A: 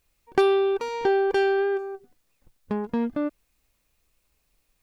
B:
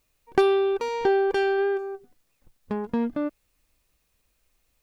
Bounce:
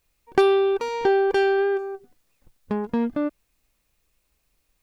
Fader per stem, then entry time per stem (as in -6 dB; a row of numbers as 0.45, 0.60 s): -0.5, -9.5 dB; 0.00, 0.00 s